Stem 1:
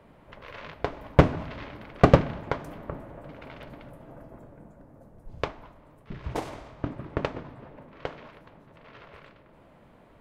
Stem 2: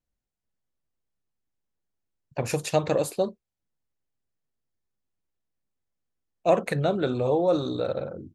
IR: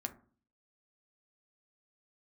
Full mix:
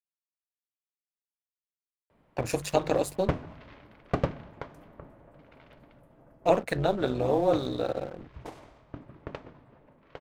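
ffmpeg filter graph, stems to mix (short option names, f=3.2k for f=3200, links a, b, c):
-filter_complex "[0:a]adelay=2100,volume=-11dB[a];[1:a]aeval=exprs='sgn(val(0))*max(abs(val(0))-0.00562,0)':c=same,tremolo=f=200:d=0.75,bandreject=f=50:t=h:w=6,bandreject=f=100:t=h:w=6,bandreject=f=150:t=h:w=6,volume=2dB[b];[a][b]amix=inputs=2:normalize=0"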